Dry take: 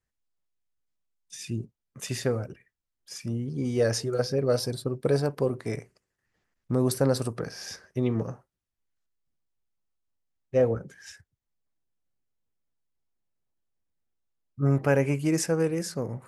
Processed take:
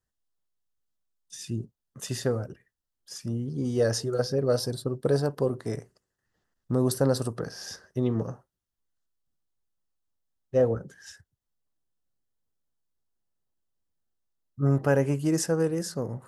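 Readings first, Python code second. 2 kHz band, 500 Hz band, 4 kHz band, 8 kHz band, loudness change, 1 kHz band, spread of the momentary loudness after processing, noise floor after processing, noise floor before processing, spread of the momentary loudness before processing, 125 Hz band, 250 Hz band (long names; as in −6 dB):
−2.0 dB, 0.0 dB, −0.5 dB, 0.0 dB, 0.0 dB, 0.0 dB, 14 LU, −85 dBFS, −85 dBFS, 16 LU, 0.0 dB, 0.0 dB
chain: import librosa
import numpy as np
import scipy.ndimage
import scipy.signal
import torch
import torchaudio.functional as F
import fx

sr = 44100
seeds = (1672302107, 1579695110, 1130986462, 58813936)

y = fx.peak_eq(x, sr, hz=2300.0, db=-13.5, octaves=0.29)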